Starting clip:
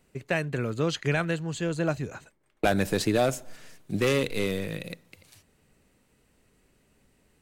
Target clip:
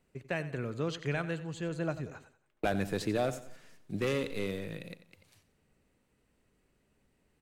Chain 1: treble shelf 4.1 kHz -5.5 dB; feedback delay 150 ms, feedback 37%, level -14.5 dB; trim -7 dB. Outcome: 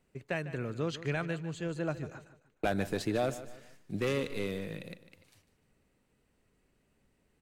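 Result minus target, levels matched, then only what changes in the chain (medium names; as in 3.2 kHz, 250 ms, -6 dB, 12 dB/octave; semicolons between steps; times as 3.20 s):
echo 59 ms late
change: feedback delay 91 ms, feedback 37%, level -14.5 dB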